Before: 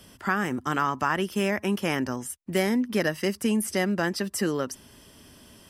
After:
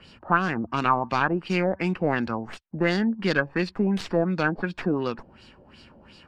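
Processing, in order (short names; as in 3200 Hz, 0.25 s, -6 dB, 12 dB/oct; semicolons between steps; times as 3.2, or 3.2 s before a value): tracing distortion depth 0.13 ms; wide varispeed 0.908×; LFO low-pass sine 2.8 Hz 620–4400 Hz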